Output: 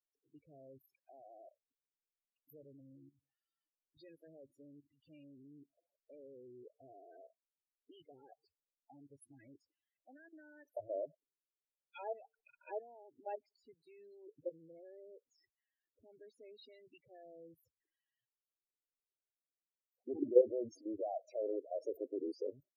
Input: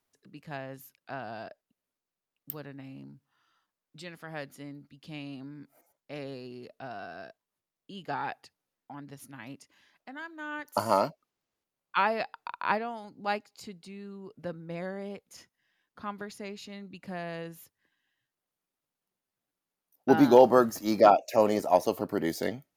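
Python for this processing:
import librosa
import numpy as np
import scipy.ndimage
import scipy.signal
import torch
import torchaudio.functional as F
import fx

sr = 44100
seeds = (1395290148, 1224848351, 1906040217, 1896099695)

y = fx.rotary(x, sr, hz=0.75)
y = fx.level_steps(y, sr, step_db=17)
y = fx.fixed_phaser(y, sr, hz=470.0, stages=4)
y = fx.spec_topn(y, sr, count=8)
y = y * 10.0 ** (-1.0 / 20.0)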